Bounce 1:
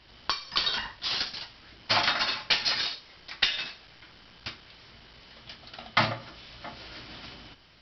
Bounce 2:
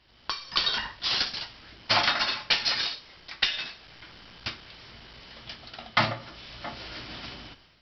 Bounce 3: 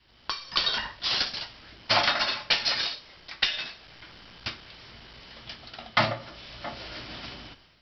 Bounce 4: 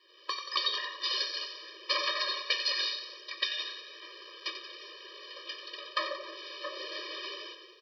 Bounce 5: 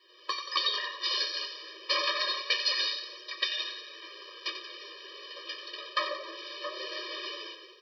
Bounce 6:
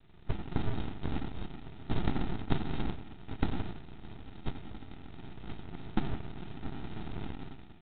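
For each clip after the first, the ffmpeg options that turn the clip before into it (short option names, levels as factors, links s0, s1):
-af "dynaudnorm=f=140:g=5:m=3.35,volume=0.473"
-af "adynamicequalizer=threshold=0.00447:dfrequency=600:dqfactor=3.8:tfrequency=600:tqfactor=3.8:attack=5:release=100:ratio=0.375:range=2.5:mode=boostabove:tftype=bell"
-filter_complex "[0:a]acompressor=threshold=0.02:ratio=2,asplit=2[s0][s1];[s1]asplit=7[s2][s3][s4][s5][s6][s7][s8];[s2]adelay=90,afreqshift=41,volume=0.335[s9];[s3]adelay=180,afreqshift=82,volume=0.197[s10];[s4]adelay=270,afreqshift=123,volume=0.116[s11];[s5]adelay=360,afreqshift=164,volume=0.0692[s12];[s6]adelay=450,afreqshift=205,volume=0.0407[s13];[s7]adelay=540,afreqshift=246,volume=0.024[s14];[s8]adelay=630,afreqshift=287,volume=0.0141[s15];[s9][s10][s11][s12][s13][s14][s15]amix=inputs=7:normalize=0[s16];[s0][s16]amix=inputs=2:normalize=0,afftfilt=real='re*eq(mod(floor(b*sr/1024/320),2),1)':imag='im*eq(mod(floor(b*sr/1024/320),2),1)':win_size=1024:overlap=0.75,volume=1.5"
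-af "flanger=delay=8:depth=4.6:regen=-34:speed=0.29:shape=sinusoidal,volume=1.88"
-af "aresample=8000,acrusher=samples=15:mix=1:aa=0.000001,aresample=44100,aeval=exprs='abs(val(0))':c=same,volume=1.58" -ar 8000 -c:a adpcm_g726 -b:a 24k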